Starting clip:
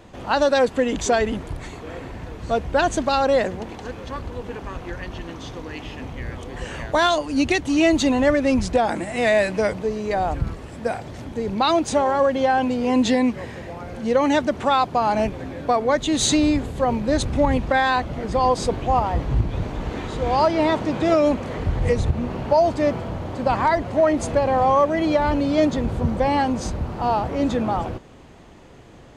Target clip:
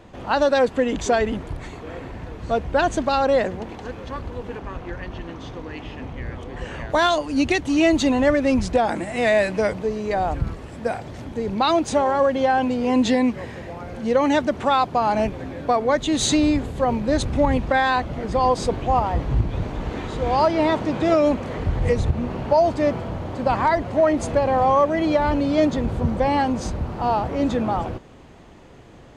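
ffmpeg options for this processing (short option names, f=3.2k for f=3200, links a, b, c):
-af "asetnsamples=n=441:p=0,asendcmd='4.59 highshelf g -12;6.9 highshelf g -3',highshelf=f=5k:g=-6.5"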